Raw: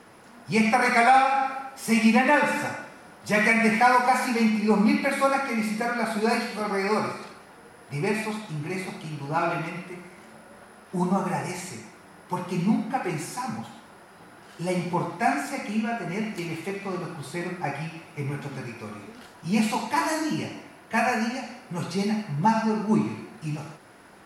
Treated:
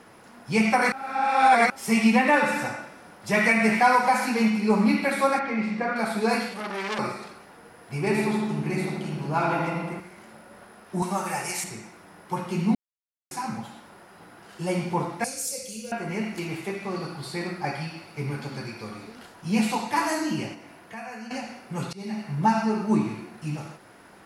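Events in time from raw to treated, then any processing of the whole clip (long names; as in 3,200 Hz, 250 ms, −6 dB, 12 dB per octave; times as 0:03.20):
0:00.92–0:01.70: reverse
0:02.85–0:03.37: delay throw 370 ms, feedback 75%, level −15 dB
0:05.39–0:05.96: low-pass filter 3,100 Hz
0:06.49–0:06.99: saturating transformer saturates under 3,100 Hz
0:07.99–0:10.00: feedback echo with a low-pass in the loop 79 ms, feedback 76%, level −4 dB
0:11.02–0:11.64: spectral tilt +3 dB per octave
0:12.75–0:13.31: silence
0:15.24–0:15.92: drawn EQ curve 110 Hz 0 dB, 350 Hz −23 dB, 500 Hz +3 dB, 750 Hz −24 dB, 1,800 Hz −20 dB, 3,500 Hz −1 dB, 6,400 Hz +12 dB
0:16.96–0:19.15: parametric band 4,500 Hz +12 dB 0.21 octaves
0:20.54–0:21.31: downward compressor 2.5 to 1, threshold −42 dBFS
0:21.93–0:22.33: fade in, from −22.5 dB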